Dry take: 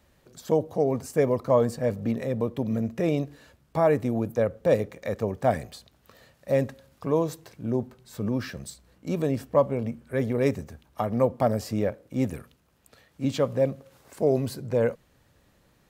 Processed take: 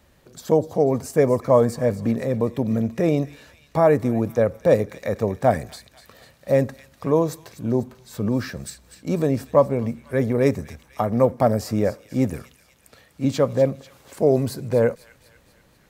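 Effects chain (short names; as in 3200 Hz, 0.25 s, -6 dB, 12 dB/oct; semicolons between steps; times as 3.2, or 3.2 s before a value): on a send: thin delay 0.246 s, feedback 55%, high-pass 2200 Hz, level -12.5 dB; on the sum: dynamic EQ 3000 Hz, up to -6 dB, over -54 dBFS, Q 2.6; gain +5 dB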